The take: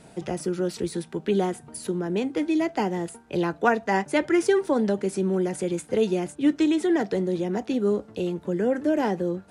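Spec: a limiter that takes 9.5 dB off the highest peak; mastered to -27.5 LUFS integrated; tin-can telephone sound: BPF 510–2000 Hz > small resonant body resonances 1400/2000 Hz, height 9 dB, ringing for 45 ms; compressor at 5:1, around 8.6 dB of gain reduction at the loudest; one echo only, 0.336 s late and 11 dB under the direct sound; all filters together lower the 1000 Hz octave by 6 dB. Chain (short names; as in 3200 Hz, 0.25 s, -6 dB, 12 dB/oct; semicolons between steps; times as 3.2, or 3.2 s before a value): bell 1000 Hz -7.5 dB; compressor 5:1, threshold -26 dBFS; limiter -26.5 dBFS; BPF 510–2000 Hz; echo 0.336 s -11 dB; small resonant body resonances 1400/2000 Hz, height 9 dB, ringing for 45 ms; gain +14 dB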